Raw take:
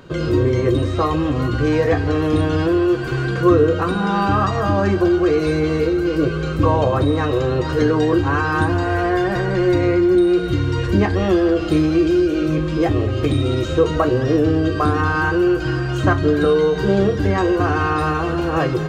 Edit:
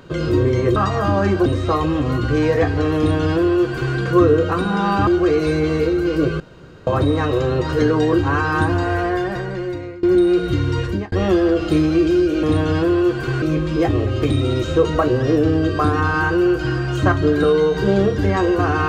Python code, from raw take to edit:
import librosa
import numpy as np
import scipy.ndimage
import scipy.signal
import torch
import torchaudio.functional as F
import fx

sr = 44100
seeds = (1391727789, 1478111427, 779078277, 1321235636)

y = fx.edit(x, sr, fx.duplicate(start_s=2.27, length_s=0.99, to_s=12.43),
    fx.move(start_s=4.37, length_s=0.7, to_s=0.76),
    fx.room_tone_fill(start_s=6.4, length_s=0.47),
    fx.fade_out_to(start_s=8.85, length_s=1.18, floor_db=-22.5),
    fx.fade_out_span(start_s=10.79, length_s=0.33), tone=tone)